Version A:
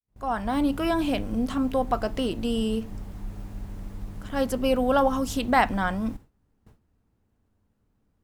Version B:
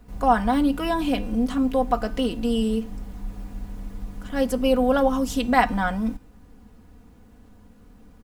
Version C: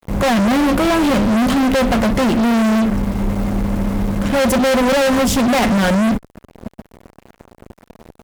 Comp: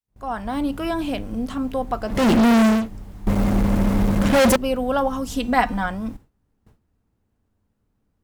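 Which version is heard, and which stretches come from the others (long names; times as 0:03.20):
A
0:02.18–0:02.77: punch in from C, crossfade 0.24 s
0:03.27–0:04.56: punch in from C
0:05.32–0:05.86: punch in from B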